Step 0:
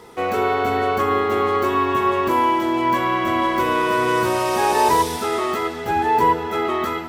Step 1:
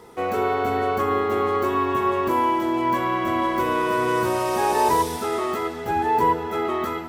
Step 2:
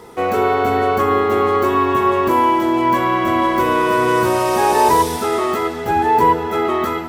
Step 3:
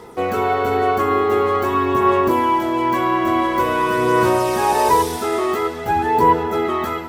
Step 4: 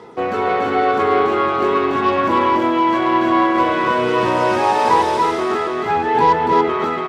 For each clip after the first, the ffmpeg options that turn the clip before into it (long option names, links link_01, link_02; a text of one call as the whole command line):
ffmpeg -i in.wav -af "equalizer=frequency=3300:width=0.52:gain=-4,volume=-2dB" out.wav
ffmpeg -i in.wav -af "acontrast=26,volume=1.5dB" out.wav
ffmpeg -i in.wav -af "aphaser=in_gain=1:out_gain=1:delay=2.9:decay=0.3:speed=0.47:type=sinusoidal,volume=-2.5dB" out.wav
ffmpeg -i in.wav -af "aeval=exprs='0.631*(cos(1*acos(clip(val(0)/0.631,-1,1)))-cos(1*PI/2))+0.0316*(cos(8*acos(clip(val(0)/0.631,-1,1)))-cos(8*PI/2))':channel_layout=same,highpass=120,lowpass=4800,aecho=1:1:285:0.708" out.wav